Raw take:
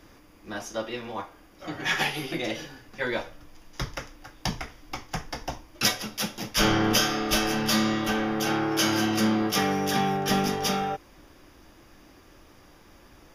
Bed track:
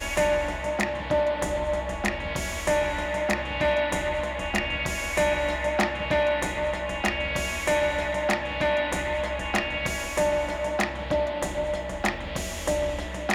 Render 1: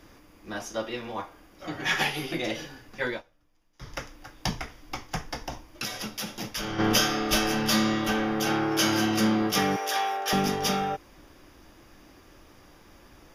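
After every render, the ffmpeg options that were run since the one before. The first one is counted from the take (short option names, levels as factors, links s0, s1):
-filter_complex "[0:a]asplit=3[s0][s1][s2];[s0]afade=t=out:st=5.43:d=0.02[s3];[s1]acompressor=threshold=0.0398:ratio=12:attack=3.2:release=140:knee=1:detection=peak,afade=t=in:st=5.43:d=0.02,afade=t=out:st=6.78:d=0.02[s4];[s2]afade=t=in:st=6.78:d=0.02[s5];[s3][s4][s5]amix=inputs=3:normalize=0,asettb=1/sr,asplit=3[s6][s7][s8];[s6]atrim=end=9.764[s9];[s7]atrim=start=9.76:end=10.33,asetpts=PTS-STARTPTS,afade=t=in:d=0.004:c=qsin,afade=t=out:st=0.566:d=0.004:c=qsin,highpass=f=500:w=0.5412,highpass=f=500:w=1.3066[s10];[s8]atrim=start=10.326[s11];[s9][s10]acrossfade=d=0.004:c1=hsin:c2=qsin[s12];[s12][s11]acrossfade=d=0.004:c1=qsin:c2=hsin,asplit=3[s13][s14][s15];[s13]atrim=end=3.22,asetpts=PTS-STARTPTS,afade=t=out:st=3.07:d=0.15:silence=0.1[s16];[s14]atrim=start=3.22:end=3.8,asetpts=PTS-STARTPTS,volume=0.1[s17];[s15]atrim=start=3.8,asetpts=PTS-STARTPTS,afade=t=in:d=0.15:silence=0.1[s18];[s16][s17][s18]concat=n=3:v=0:a=1"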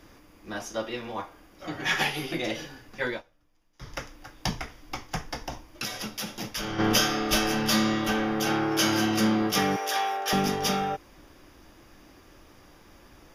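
-af anull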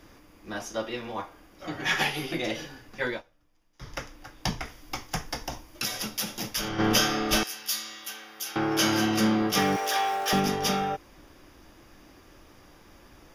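-filter_complex "[0:a]asettb=1/sr,asplit=3[s0][s1][s2];[s0]atrim=end=4.654[s3];[s1]atrim=start=4.65:end=6.69,asetpts=PTS-STARTPTS,afade=t=in:d=0.004:c=qsin,afade=t=out:st=2.036:d=0.004:c=qsin,highshelf=f=5800:g=8[s4];[s2]atrim=start=6.686[s5];[s3][s4]acrossfade=d=0.004:c1=hsin:c2=qsin[s6];[s6][s5]acrossfade=d=0.004:c1=qsin:c2=hsin,asettb=1/sr,asplit=3[s7][s8][s9];[s7]atrim=end=7.434[s10];[s8]atrim=start=7.43:end=8.56,asetpts=PTS-STARTPTS,afade=t=in:d=0.004:c=qsin,afade=t=out:st=1.126:d=0.004:c=qsin,aderivative[s11];[s9]atrim=start=8.556[s12];[s10][s11]acrossfade=d=0.004:c1=hsin:c2=qsin[s13];[s13][s12]acrossfade=d=0.004:c1=qsin:c2=hsin,asettb=1/sr,asplit=3[s14][s15][s16];[s14]atrim=end=9.574[s17];[s15]atrim=start=9.57:end=10.4,asetpts=PTS-STARTPTS,afade=t=in:d=0.004:c=qsin,afade=t=out:st=0.826:d=0.004:c=qsin,aeval=exprs='val(0)+0.5*0.0141*sgn(val(0))':c=same[s18];[s16]atrim=start=10.396[s19];[s17][s18]acrossfade=d=0.004:c1=hsin:c2=qsin[s20];[s20][s19]acrossfade=d=0.004:c1=qsin:c2=hsin"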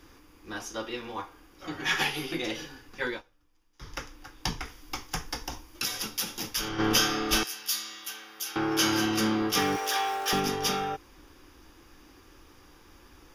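-af "equalizer=f=125:t=o:w=0.33:g=-7,equalizer=f=200:t=o:w=0.33:g=-8,equalizer=f=630:t=o:w=0.33:g=-12,equalizer=f=2000:t=o:w=0.33:g=-3"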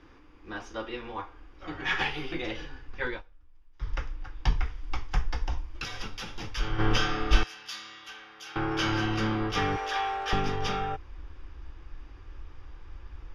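-af "asubboost=boost=8:cutoff=79,lowpass=3000"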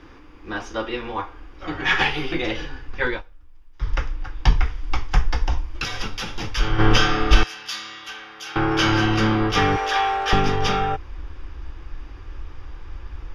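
-af "volume=2.82,alimiter=limit=0.891:level=0:latency=1"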